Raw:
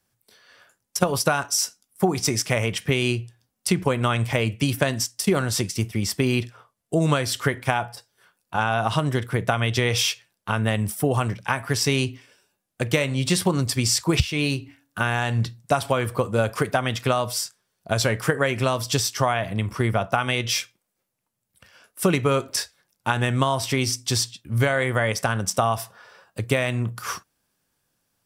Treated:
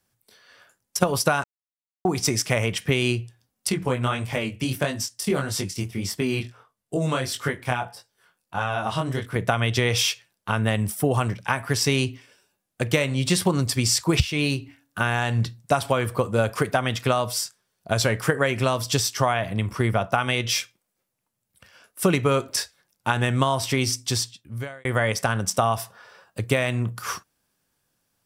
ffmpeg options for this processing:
-filter_complex "[0:a]asettb=1/sr,asplit=3[a][b][c];[a]atrim=end=3.694[d];[b]atrim=start=3.69:end=9.36,asetpts=PTS-STARTPTS,afade=t=in:d=0.004:c=qsin,afade=t=out:st=5.666:d=0.004:c=qsin,flanger=delay=19.5:depth=4.7:speed=1.6[e];[c]atrim=start=9.356[f];[d][e]acrossfade=d=0.004:c1=hsin:c2=qsin[g];[g][f]acrossfade=d=0.004:c1=qsin:c2=hsin,asplit=4[h][i][j][k];[h]atrim=end=1.44,asetpts=PTS-STARTPTS,afade=t=out:st=1.436:d=0.004:c=hsin[l];[i]atrim=start=1.44:end=2.05,asetpts=PTS-STARTPTS,volume=0[m];[j]atrim=start=2.05:end=24.85,asetpts=PTS-STARTPTS,afade=t=in:d=0.004:c=hsin,afade=t=out:st=21.95:d=0.85[n];[k]atrim=start=24.85,asetpts=PTS-STARTPTS,afade=t=in:d=0.004:c=hsin[o];[l][m][n][o]concat=n=4:v=0:a=1"

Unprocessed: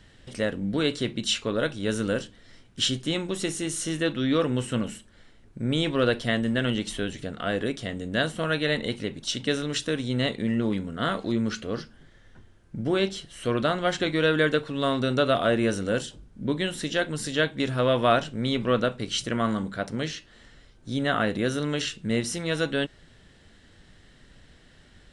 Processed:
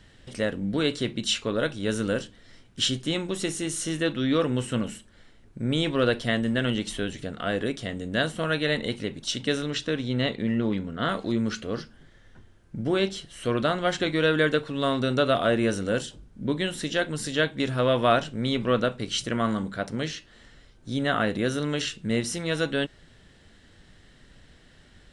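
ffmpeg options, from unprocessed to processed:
-filter_complex "[0:a]asettb=1/sr,asplit=3[a][b][c];[a]atrim=end=9.704[d];[b]atrim=start=9.7:end=11.09,asetpts=PTS-STARTPTS,afade=t=in:d=0.004:c=qsin,afade=t=out:st=1.386:d=0.004:c=qsin,lowpass=5.3k[e];[c]atrim=start=11.086[f];[d][e]acrossfade=d=0.004:c1=hsin:c2=qsin[g];[g][f]acrossfade=d=0.004:c1=qsin:c2=hsin"

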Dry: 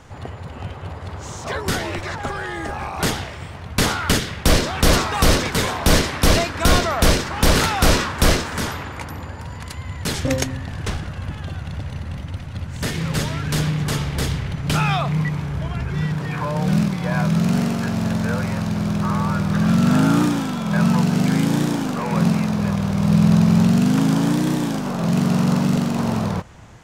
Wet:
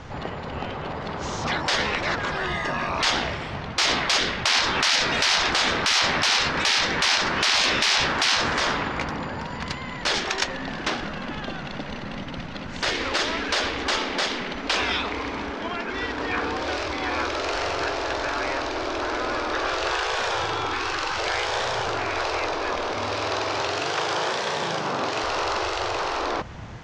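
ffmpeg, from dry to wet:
-filter_complex "[0:a]asettb=1/sr,asplit=3[a][b][c];[a]atrim=end=2.354[d];[b]atrim=start=2.35:end=2.89,asetpts=PTS-STARTPTS,afade=t=in:d=0.004:c=qsin,afade=t=out:st=0.536:d=0.004:c=qsin,aecho=1:1:1.1:0.53,atrim=end_sample=23814[e];[c]atrim=start=2.886[f];[d][e]acrossfade=d=0.004:c1=hsin:c2=qsin[g];[g][f]acrossfade=d=0.004:c1=qsin:c2=hsin,asettb=1/sr,asplit=3[h][i][j];[h]atrim=end=20.474[k];[i]atrim=start=20.47:end=21.17,asetpts=PTS-STARTPTS,afade=t=in:d=0.004:c=qsin,afade=t=out:st=0.696:d=0.004:c=qsin,equalizer=f=600:t=o:w=0.77:g=13.5[l];[j]atrim=start=21.166[m];[k][l]acrossfade=d=0.004:c1=hsin:c2=qsin[n];[n][m]acrossfade=d=0.004:c1=qsin:c2=hsin,asettb=1/sr,asplit=3[o][p][q];[o]atrim=end=22.944[r];[p]atrim=start=22.94:end=25.24,asetpts=PTS-STARTPTS,afade=t=in:d=0.004:c=qsin,afade=t=out:st=2.296:d=0.004:c=qsin,highpass=f=460:p=1[s];[q]atrim=start=25.236[t];[r][s]acrossfade=d=0.004:c1=hsin:c2=qsin[u];[u][t]acrossfade=d=0.004:c1=qsin:c2=hsin,lowpass=f=5.6k:w=0.5412,lowpass=f=5.6k:w=1.3066,acontrast=36,afftfilt=real='re*lt(hypot(re,im),0.316)':imag='im*lt(hypot(re,im),0.316)':win_size=1024:overlap=0.75"

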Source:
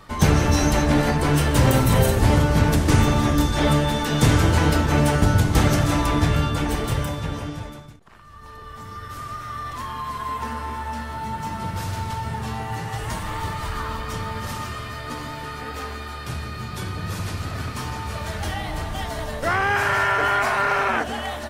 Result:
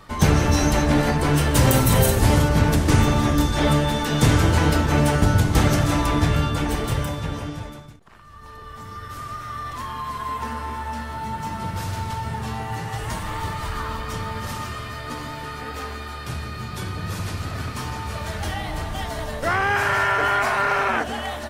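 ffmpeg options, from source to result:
-filter_complex "[0:a]asettb=1/sr,asplit=3[a][b][c];[a]atrim=end=1.554[d];[b]atrim=start=1.55:end=2.49,asetpts=PTS-STARTPTS,afade=t=in:d=0.004:c=qsin,afade=t=out:st=0.936:d=0.004:c=qsin,highshelf=f=5.3k:g=7[e];[c]atrim=start=2.486[f];[d][e]acrossfade=d=0.004:c1=hsin:c2=qsin[g];[g][f]acrossfade=d=0.004:c1=qsin:c2=hsin"

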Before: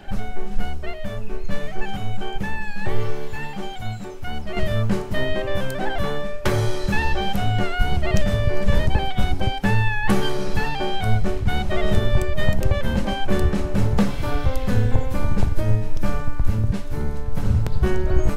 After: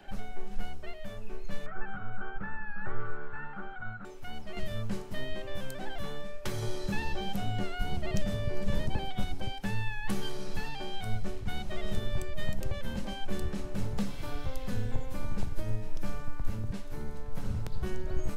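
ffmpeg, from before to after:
-filter_complex "[0:a]asettb=1/sr,asplit=3[a][b][c];[a]atrim=end=1.664[d];[b]atrim=start=1.66:end=4.05,asetpts=PTS-STARTPTS,afade=t=in:d=0.004:c=qsin,afade=t=out:st=2.386:d=0.004:c=qsin,lowpass=f=1.4k:t=q:w=15[e];[c]atrim=start=4.046[f];[d][e]acrossfade=d=0.004:c1=hsin:c2=qsin[g];[g][f]acrossfade=d=0.004:c1=qsin:c2=hsin,asettb=1/sr,asplit=3[h][i][j];[h]atrim=end=6.624[k];[i]atrim=start=6.62:end=9.24,asetpts=PTS-STARTPTS,afade=t=in:d=0.004:c=qsin,afade=t=out:st=2.616:d=0.004:c=qsin,equalizer=f=420:w=0.3:g=6[l];[j]atrim=start=9.236[m];[k][l]acrossfade=d=0.004:c1=hsin:c2=qsin[n];[n][m]acrossfade=d=0.004:c1=qsin:c2=hsin,equalizer=f=69:t=o:w=2.7:g=-7.5,acrossover=split=250|3000[o][p][q];[p]acompressor=threshold=-37dB:ratio=2[r];[o][r][q]amix=inputs=3:normalize=0,volume=-9dB"

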